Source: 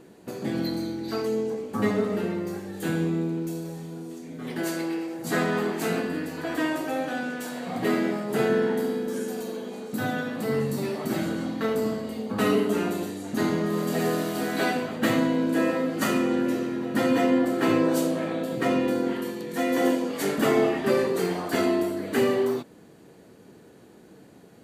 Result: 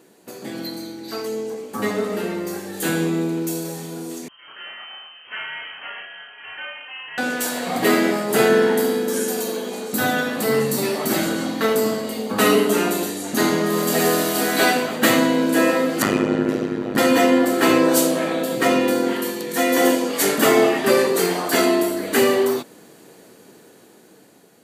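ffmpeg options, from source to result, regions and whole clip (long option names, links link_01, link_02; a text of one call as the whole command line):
ffmpeg -i in.wav -filter_complex "[0:a]asettb=1/sr,asplit=3[link_01][link_02][link_03];[link_01]atrim=end=4.284[link_04];[link_02]atrim=start=4.28:end=7.18,asetpts=PTS-STARTPTS,afade=type=in:duration=0.004:curve=qsin,afade=type=out:start_time=2.896:duration=0.004:curve=qsin,aderivative,asplit=2[link_05][link_06];[link_06]adelay=33,volume=-3dB[link_07];[link_05][link_07]amix=inputs=2:normalize=0,atrim=end_sample=127890,lowpass=frequency=2900:width_type=q:width=0.5098,lowpass=frequency=2900:width_type=q:width=0.6013,lowpass=frequency=2900:width_type=q:width=0.9,lowpass=frequency=2900:width_type=q:width=2.563,afreqshift=-3400[link_08];[link_03]atrim=start=7.176[link_09];[link_04][link_08]acrossfade=duration=0.004:curve1=hsin:curve2=qsin[link_10];[link_10][link_09]acrossfade=duration=0.004:curve1=qsin:curve2=hsin,asettb=1/sr,asplit=3[link_11][link_12][link_13];[link_11]atrim=end=16.024[link_14];[link_12]atrim=start=16.02:end=16.98,asetpts=PTS-STARTPTS,afade=type=in:duration=0.004:curve=qsin,afade=type=out:start_time=0.956:duration=0.004:curve=qsin,aemphasis=mode=reproduction:type=bsi,tremolo=f=100:d=0.974[link_15];[link_13]atrim=start=16.976[link_16];[link_14][link_15]acrossfade=duration=0.004:curve1=hsin:curve2=qsin[link_17];[link_17][link_16]acrossfade=duration=0.004:curve1=qsin:curve2=hsin,highpass=frequency=330:poles=1,highshelf=frequency=4900:gain=8.5,dynaudnorm=framelen=930:gausssize=5:maxgain=10dB" out.wav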